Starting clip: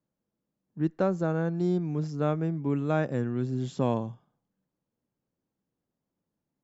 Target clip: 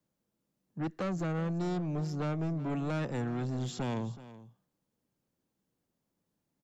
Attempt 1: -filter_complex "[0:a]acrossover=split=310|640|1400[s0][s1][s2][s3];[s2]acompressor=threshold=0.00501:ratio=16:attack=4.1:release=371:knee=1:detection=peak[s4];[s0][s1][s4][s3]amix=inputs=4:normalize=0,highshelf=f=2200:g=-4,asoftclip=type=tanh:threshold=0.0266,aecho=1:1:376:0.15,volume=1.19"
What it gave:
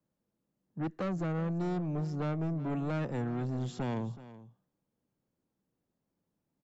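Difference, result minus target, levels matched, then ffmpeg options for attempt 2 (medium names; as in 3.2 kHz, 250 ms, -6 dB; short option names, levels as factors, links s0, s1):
4 kHz band -4.5 dB
-filter_complex "[0:a]acrossover=split=310|640|1400[s0][s1][s2][s3];[s2]acompressor=threshold=0.00501:ratio=16:attack=4.1:release=371:knee=1:detection=peak[s4];[s0][s1][s4][s3]amix=inputs=4:normalize=0,highshelf=f=2200:g=4,asoftclip=type=tanh:threshold=0.0266,aecho=1:1:376:0.15,volume=1.19"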